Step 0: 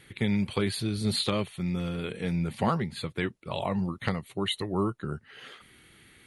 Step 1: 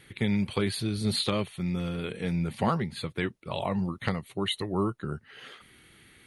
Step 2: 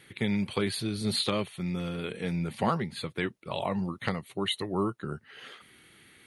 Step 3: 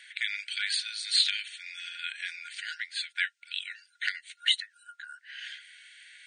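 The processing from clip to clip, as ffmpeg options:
-af "bandreject=f=7.4k:w=18"
-af "highpass=f=140:p=1"
-af "afftfilt=real='re*between(b*sr/4096,1400,9100)':imag='im*between(b*sr/4096,1400,9100)':win_size=4096:overlap=0.75,volume=6.5dB"

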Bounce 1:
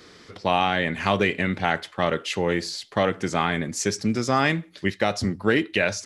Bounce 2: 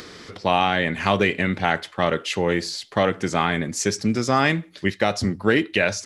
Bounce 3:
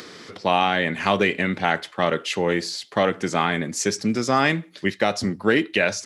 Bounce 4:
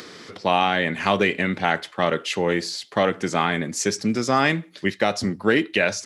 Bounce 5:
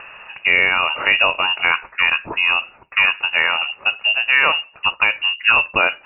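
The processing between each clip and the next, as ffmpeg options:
-af "acompressor=mode=upward:threshold=-36dB:ratio=2.5,volume=2dB"
-af "highpass=140"
-af anull
-af "lowpass=f=2.6k:t=q:w=0.5098,lowpass=f=2.6k:t=q:w=0.6013,lowpass=f=2.6k:t=q:w=0.9,lowpass=f=2.6k:t=q:w=2.563,afreqshift=-3000,volume=4.5dB"

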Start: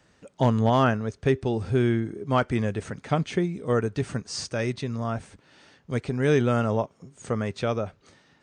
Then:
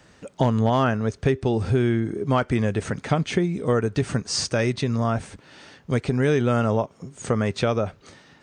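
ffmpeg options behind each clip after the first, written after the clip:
-af "acompressor=threshold=-27dB:ratio=3,volume=8dB"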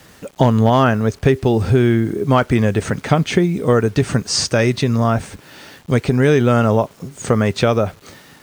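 -af "acrusher=bits=8:mix=0:aa=0.000001,volume=7dB"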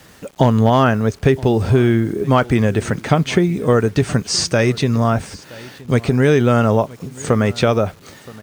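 -af "aecho=1:1:972:0.0841"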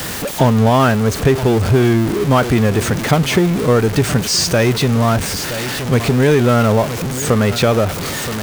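-af "aeval=exprs='val(0)+0.5*0.158*sgn(val(0))':c=same,volume=-1dB"

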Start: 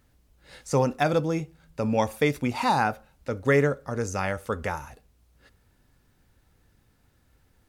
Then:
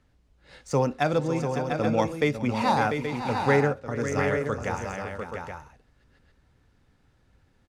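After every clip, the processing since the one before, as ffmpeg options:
-filter_complex "[0:a]acrossover=split=310[a][b];[b]adynamicsmooth=sensitivity=6.5:basefreq=6.7k[c];[a][c]amix=inputs=2:normalize=0,aecho=1:1:415|551|695|826:0.126|0.299|0.473|0.376,volume=-1dB"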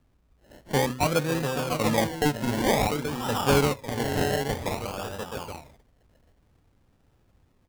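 -af "bandreject=f=63.42:t=h:w=4,bandreject=f=126.84:t=h:w=4,bandreject=f=190.26:t=h:w=4,bandreject=f=253.68:t=h:w=4,bandreject=f=317.1:t=h:w=4,bandreject=f=380.52:t=h:w=4,acrusher=samples=29:mix=1:aa=0.000001:lfo=1:lforange=17.4:lforate=0.53"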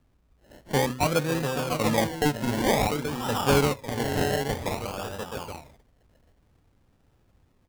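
-af anull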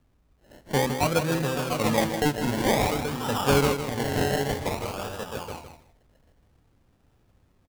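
-af "aecho=1:1:159|318:0.376|0.0564"

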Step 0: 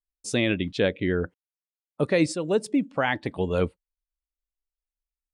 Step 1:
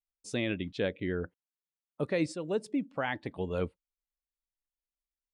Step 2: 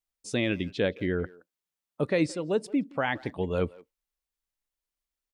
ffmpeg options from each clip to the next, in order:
-af "highshelf=f=6.3k:g=-6,volume=-8dB"
-filter_complex "[0:a]asplit=2[a][b];[b]adelay=170,highpass=300,lowpass=3.4k,asoftclip=type=hard:threshold=-26.5dB,volume=-21dB[c];[a][c]amix=inputs=2:normalize=0,volume=4.5dB"

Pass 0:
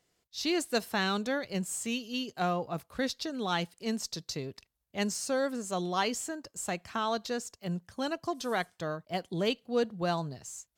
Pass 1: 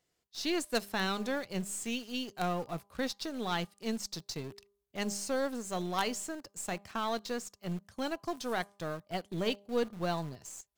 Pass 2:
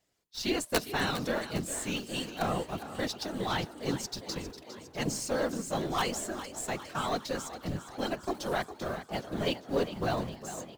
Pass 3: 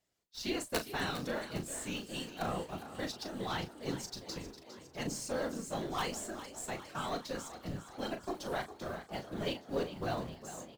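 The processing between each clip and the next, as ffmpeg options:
-filter_complex "[0:a]bandreject=f=201.3:t=h:w=4,bandreject=f=402.6:t=h:w=4,bandreject=f=603.9:t=h:w=4,bandreject=f=805.2:t=h:w=4,bandreject=f=1.0065k:t=h:w=4,bandreject=f=1.2078k:t=h:w=4,asplit=2[a][b];[b]acrusher=bits=4:dc=4:mix=0:aa=0.000001,volume=-4.5dB[c];[a][c]amix=inputs=2:normalize=0,volume=-5dB"
-filter_complex "[0:a]afftfilt=real='hypot(re,im)*cos(2*PI*random(0))':imag='hypot(re,im)*sin(2*PI*random(1))':win_size=512:overlap=0.75,aeval=exprs='(mod(16.8*val(0)+1,2)-1)/16.8':c=same,asplit=7[a][b][c][d][e][f][g];[b]adelay=406,afreqshift=46,volume=-12.5dB[h];[c]adelay=812,afreqshift=92,volume=-17.2dB[i];[d]adelay=1218,afreqshift=138,volume=-22dB[j];[e]adelay=1624,afreqshift=184,volume=-26.7dB[k];[f]adelay=2030,afreqshift=230,volume=-31.4dB[l];[g]adelay=2436,afreqshift=276,volume=-36.2dB[m];[a][h][i][j][k][l][m]amix=inputs=7:normalize=0,volume=8dB"
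-filter_complex "[0:a]asplit=2[a][b];[b]adelay=37,volume=-9dB[c];[a][c]amix=inputs=2:normalize=0,volume=-6dB"

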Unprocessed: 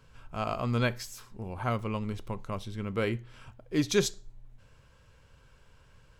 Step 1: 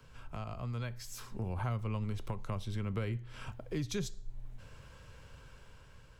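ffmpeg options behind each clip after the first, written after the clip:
-filter_complex "[0:a]acrossover=split=150[a][b];[b]acompressor=threshold=-45dB:ratio=5[c];[a][c]amix=inputs=2:normalize=0,acrossover=split=400|1600|1800[d][e][f][g];[d]alimiter=level_in=11.5dB:limit=-24dB:level=0:latency=1:release=324,volume=-11.5dB[h];[h][e][f][g]amix=inputs=4:normalize=0,dynaudnorm=f=290:g=7:m=5dB,volume=1dB"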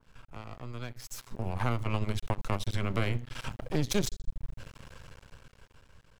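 -af "dynaudnorm=f=210:g=13:m=10dB,aeval=exprs='max(val(0),0)':c=same,adynamicequalizer=threshold=0.00398:dfrequency=2100:dqfactor=0.7:tfrequency=2100:tqfactor=0.7:attack=5:release=100:ratio=0.375:range=1.5:mode=boostabove:tftype=highshelf"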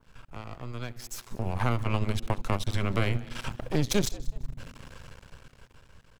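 -filter_complex "[0:a]asplit=3[a][b][c];[b]adelay=187,afreqshift=120,volume=-21dB[d];[c]adelay=374,afreqshift=240,volume=-30.9dB[e];[a][d][e]amix=inputs=3:normalize=0,volume=3dB"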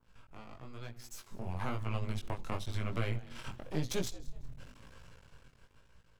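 -af "flanger=delay=17:depth=6:speed=1,volume=-6dB"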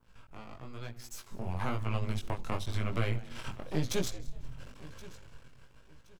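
-af "aecho=1:1:1072|2144:0.106|0.0286,volume=3dB"

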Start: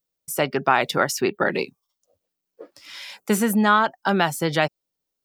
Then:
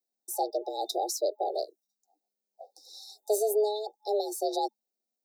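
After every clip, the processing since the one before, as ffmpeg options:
-af "afftfilt=real='re*(1-between(b*sr/4096,640,3400))':imag='im*(1-between(b*sr/4096,640,3400))':win_size=4096:overlap=0.75,afreqshift=210,volume=-6dB"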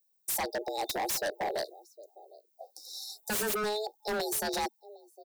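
-filter_complex "[0:a]aemphasis=mode=production:type=50kf,asplit=2[a][b];[b]adelay=758,volume=-22dB,highshelf=f=4k:g=-17.1[c];[a][c]amix=inputs=2:normalize=0,aeval=exprs='0.0501*(abs(mod(val(0)/0.0501+3,4)-2)-1)':c=same"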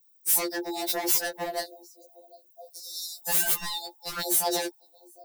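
-filter_complex "[0:a]acrossover=split=940[a][b];[b]crystalizer=i=1:c=0[c];[a][c]amix=inputs=2:normalize=0,afftfilt=real='re*2.83*eq(mod(b,8),0)':imag='im*2.83*eq(mod(b,8),0)':win_size=2048:overlap=0.75,volume=5dB"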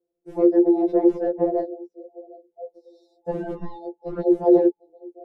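-af "lowpass=f=420:t=q:w=4.9,volume=9dB"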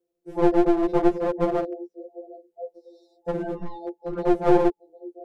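-af "aeval=exprs='clip(val(0),-1,0.0501)':c=same,volume=1dB"

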